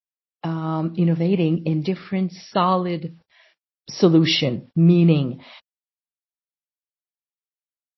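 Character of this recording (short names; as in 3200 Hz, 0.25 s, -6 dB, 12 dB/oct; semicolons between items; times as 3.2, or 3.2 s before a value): a quantiser's noise floor 10-bit, dither none; MP3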